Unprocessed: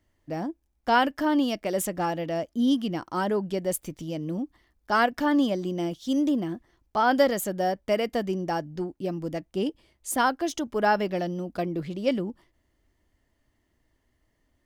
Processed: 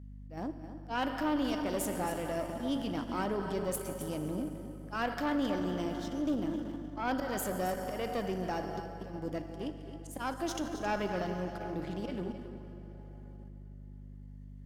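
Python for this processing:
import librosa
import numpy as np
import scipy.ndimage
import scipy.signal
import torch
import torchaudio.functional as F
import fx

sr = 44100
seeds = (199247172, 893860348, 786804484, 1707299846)

p1 = fx.auto_swell(x, sr, attack_ms=177.0)
p2 = fx.low_shelf(p1, sr, hz=73.0, db=-11.0)
p3 = fx.rev_plate(p2, sr, seeds[0], rt60_s=4.1, hf_ratio=0.65, predelay_ms=0, drr_db=6.0)
p4 = fx.level_steps(p3, sr, step_db=18)
p5 = p3 + (p4 * librosa.db_to_amplitude(0.0))
p6 = fx.add_hum(p5, sr, base_hz=50, snr_db=11)
p7 = p6 + fx.echo_single(p6, sr, ms=267, db=-11.5, dry=0)
p8 = fx.tube_stage(p7, sr, drive_db=17.0, bias=0.55)
y = p8 * librosa.db_to_amplitude(-7.0)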